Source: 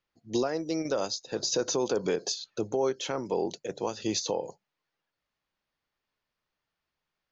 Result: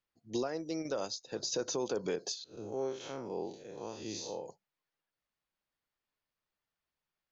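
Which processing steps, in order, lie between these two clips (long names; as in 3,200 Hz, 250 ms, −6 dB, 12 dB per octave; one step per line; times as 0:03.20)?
0:02.44–0:04.46: spectrum smeared in time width 133 ms
level −6.5 dB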